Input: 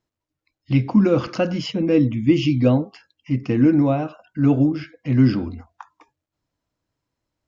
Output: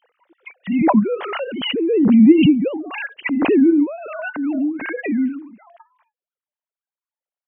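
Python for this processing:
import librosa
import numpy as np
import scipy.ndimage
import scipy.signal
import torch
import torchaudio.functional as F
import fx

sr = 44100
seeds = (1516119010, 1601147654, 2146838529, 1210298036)

y = fx.sine_speech(x, sr)
y = fx.low_shelf(y, sr, hz=470.0, db=6.5, at=(1.67, 3.87))
y = fx.pre_swell(y, sr, db_per_s=28.0)
y = y * 10.0 ** (-4.5 / 20.0)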